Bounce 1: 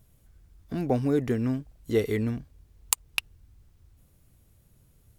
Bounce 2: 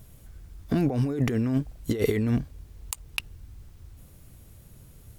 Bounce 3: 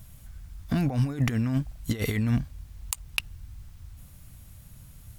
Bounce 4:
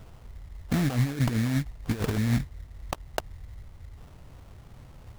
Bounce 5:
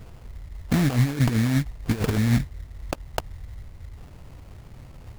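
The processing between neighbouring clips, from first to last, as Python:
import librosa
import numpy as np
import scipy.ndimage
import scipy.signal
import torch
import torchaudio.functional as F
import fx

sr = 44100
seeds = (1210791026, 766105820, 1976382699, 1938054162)

y1 = fx.over_compress(x, sr, threshold_db=-31.0, ratio=-1.0)
y1 = y1 * 10.0 ** (6.0 / 20.0)
y2 = fx.peak_eq(y1, sr, hz=400.0, db=-14.0, octaves=0.94)
y2 = y2 * 10.0 ** (2.5 / 20.0)
y3 = fx.sample_hold(y2, sr, seeds[0], rate_hz=2000.0, jitter_pct=20)
y4 = scipy.ndimage.median_filter(y3, 41, mode='constant')
y4 = y4 * 10.0 ** (4.5 / 20.0)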